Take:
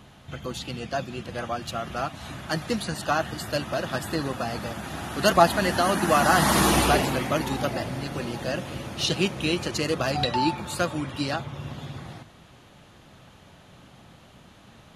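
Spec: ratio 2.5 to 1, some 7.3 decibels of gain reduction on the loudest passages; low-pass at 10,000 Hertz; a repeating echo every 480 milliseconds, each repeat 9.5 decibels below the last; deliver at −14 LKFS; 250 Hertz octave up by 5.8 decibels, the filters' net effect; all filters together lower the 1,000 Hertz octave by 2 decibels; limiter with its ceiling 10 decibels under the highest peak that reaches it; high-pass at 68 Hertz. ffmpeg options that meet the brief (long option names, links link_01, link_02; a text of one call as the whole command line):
ffmpeg -i in.wav -af "highpass=68,lowpass=10000,equalizer=frequency=250:width_type=o:gain=8,equalizer=frequency=1000:width_type=o:gain=-3.5,acompressor=threshold=-25dB:ratio=2.5,alimiter=limit=-22.5dB:level=0:latency=1,aecho=1:1:480|960|1440|1920:0.335|0.111|0.0365|0.012,volume=18dB" out.wav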